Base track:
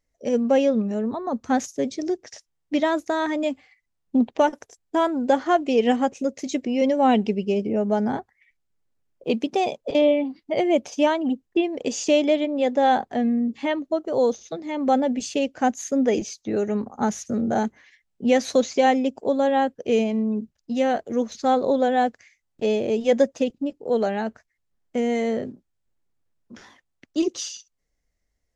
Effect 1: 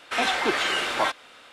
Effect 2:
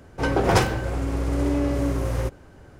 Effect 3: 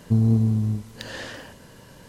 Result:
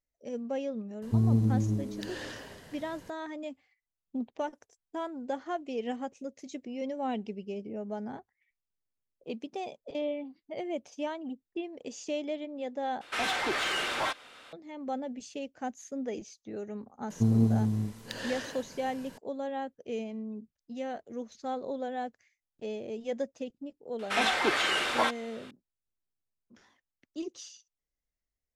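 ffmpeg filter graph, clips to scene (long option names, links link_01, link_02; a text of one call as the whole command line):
ffmpeg -i bed.wav -i cue0.wav -i cue1.wav -i cue2.wav -filter_complex "[3:a]asplit=2[link_01][link_02];[1:a]asplit=2[link_03][link_04];[0:a]volume=-15dB[link_05];[link_01]asplit=5[link_06][link_07][link_08][link_09][link_10];[link_07]adelay=276,afreqshift=98,volume=-12.5dB[link_11];[link_08]adelay=552,afreqshift=196,volume=-21.1dB[link_12];[link_09]adelay=828,afreqshift=294,volume=-29.8dB[link_13];[link_10]adelay=1104,afreqshift=392,volume=-38.4dB[link_14];[link_06][link_11][link_12][link_13][link_14]amix=inputs=5:normalize=0[link_15];[link_03]asoftclip=type=tanh:threshold=-22dB[link_16];[link_02]equalizer=frequency=60:width=1:gain=-12.5[link_17];[link_05]asplit=2[link_18][link_19];[link_18]atrim=end=13.014[link_20];[link_16]atrim=end=1.52,asetpts=PTS-STARTPTS,volume=-3dB[link_21];[link_19]atrim=start=14.526[link_22];[link_15]atrim=end=2.08,asetpts=PTS-STARTPTS,volume=-6dB,afade=type=in:duration=0.004:curve=hsin,afade=type=out:start_time=2.076:duration=0.004:curve=hsin,adelay=1020[link_23];[link_17]atrim=end=2.08,asetpts=PTS-STARTPTS,volume=-2.5dB,afade=type=in:duration=0.004:curve=hsin,afade=type=out:start_time=2.076:duration=0.004:curve=hsin,adelay=17100[link_24];[link_04]atrim=end=1.52,asetpts=PTS-STARTPTS,volume=-3dB,afade=type=in:duration=0.004:curve=hsin,afade=type=out:start_time=1.516:duration=0.004:curve=hsin,adelay=23990[link_25];[link_20][link_21]acrossfade=duration=0.004:curve1=hsin:curve2=hsin[link_26];[link_26][link_22]acrossfade=duration=0.004:curve1=hsin:curve2=hsin[link_27];[link_27][link_23][link_24][link_25]amix=inputs=4:normalize=0" out.wav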